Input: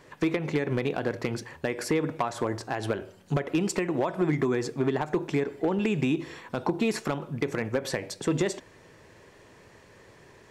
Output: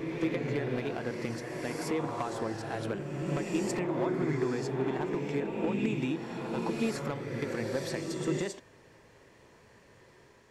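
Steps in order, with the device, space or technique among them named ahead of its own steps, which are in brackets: reverse reverb (reverse; reverb RT60 2.7 s, pre-delay 3 ms, DRR 0 dB; reverse); gain -7.5 dB

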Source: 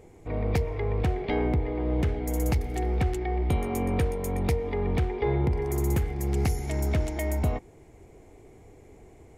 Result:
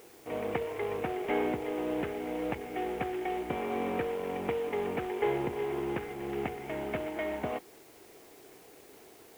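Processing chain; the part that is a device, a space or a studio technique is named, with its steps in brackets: army field radio (BPF 310–2900 Hz; CVSD 16 kbps; white noise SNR 25 dB)

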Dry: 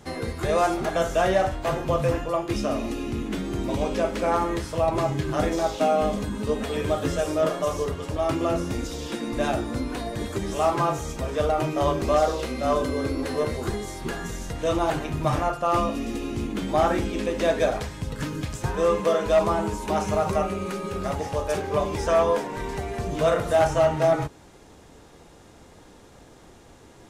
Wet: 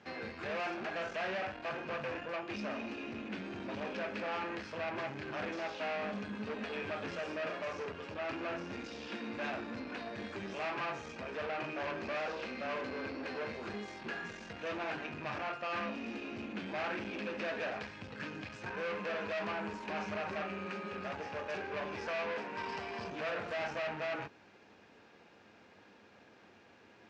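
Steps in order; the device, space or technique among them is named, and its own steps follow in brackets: guitar amplifier (tube stage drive 28 dB, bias 0.5; tone controls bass -11 dB, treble +5 dB; speaker cabinet 94–4500 Hz, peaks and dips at 100 Hz +8 dB, 210 Hz +10 dB, 1600 Hz +7 dB, 2500 Hz +9 dB, 3600 Hz -4 dB); 22.57–23.1 thirty-one-band EQ 1000 Hz +9 dB, 3150 Hz +5 dB, 5000 Hz +12 dB, 8000 Hz +5 dB; gain -7.5 dB

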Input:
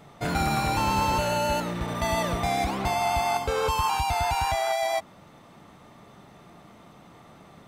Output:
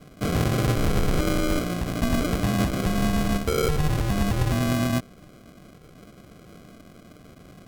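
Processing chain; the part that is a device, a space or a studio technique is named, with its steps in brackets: crushed at another speed (playback speed 1.25×; sample-and-hold 39×; playback speed 0.8×); gain +3 dB

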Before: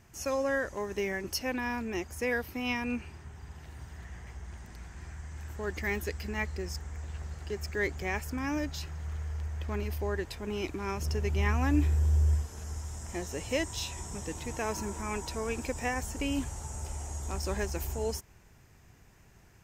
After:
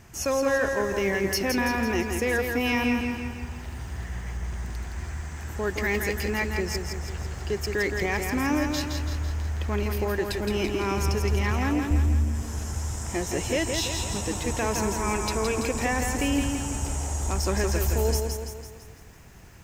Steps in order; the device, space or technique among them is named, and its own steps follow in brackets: soft clipper into limiter (soft clip -21.5 dBFS, distortion -19 dB; limiter -26.5 dBFS, peak gain reduction 4.5 dB); 11.51–11.91 HPF 140 Hz; lo-fi delay 0.167 s, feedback 55%, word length 11-bit, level -5 dB; gain +8.5 dB

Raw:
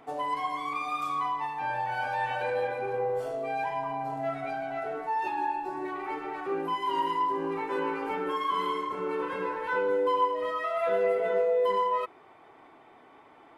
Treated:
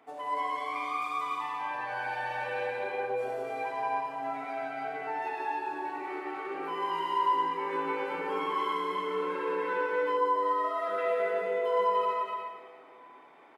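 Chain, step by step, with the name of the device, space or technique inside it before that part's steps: stadium PA (HPF 220 Hz 12 dB/oct; bell 2100 Hz +3 dB 0.77 oct; loudspeakers at several distances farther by 61 m -4 dB, 100 m -5 dB; reverb RT60 1.8 s, pre-delay 55 ms, DRR -1 dB); 10.17–10.98 bell 2500 Hz -11 dB 0.64 oct; gain -7.5 dB

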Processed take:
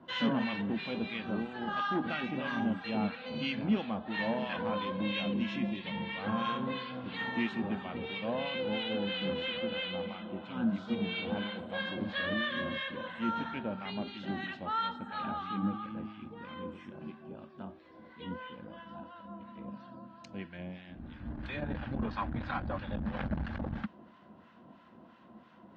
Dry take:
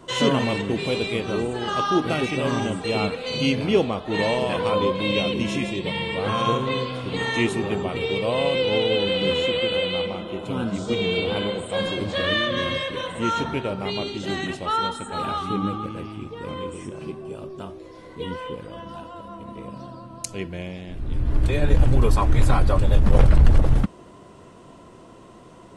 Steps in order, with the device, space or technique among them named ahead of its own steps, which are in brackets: 21.67–23.22 LPF 5500 Hz 24 dB/oct; guitar amplifier with harmonic tremolo (harmonic tremolo 3 Hz, depth 70%, crossover 1000 Hz; soft clip -15 dBFS, distortion -12 dB; speaker cabinet 92–4000 Hz, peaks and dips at 120 Hz -7 dB, 220 Hz +10 dB, 420 Hz -9 dB, 810 Hz +4 dB, 1600 Hz +8 dB); gain -8 dB

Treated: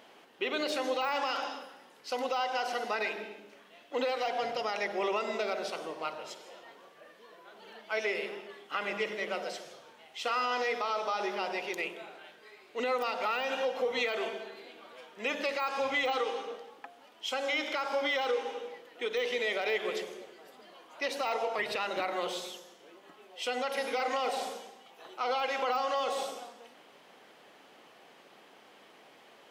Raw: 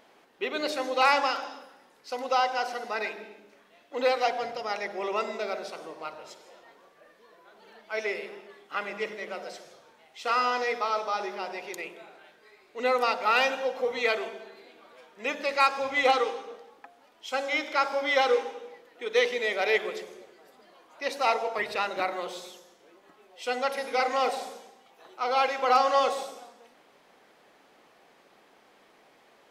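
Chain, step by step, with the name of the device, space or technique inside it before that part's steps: broadcast voice chain (HPF 91 Hz; de-esser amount 85%; compressor 3:1, threshold -29 dBFS, peak gain reduction 8.5 dB; bell 3000 Hz +5.5 dB 0.33 oct; limiter -23.5 dBFS, peak gain reduction 6 dB); gain +2 dB

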